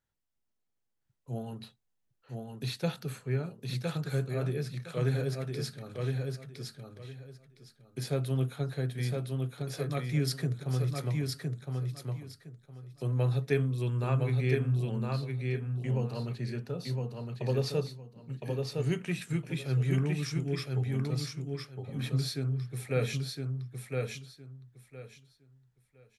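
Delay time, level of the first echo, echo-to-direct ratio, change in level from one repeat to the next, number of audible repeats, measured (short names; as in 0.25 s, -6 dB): 1.012 s, -3.5 dB, -3.5 dB, -13.5 dB, 3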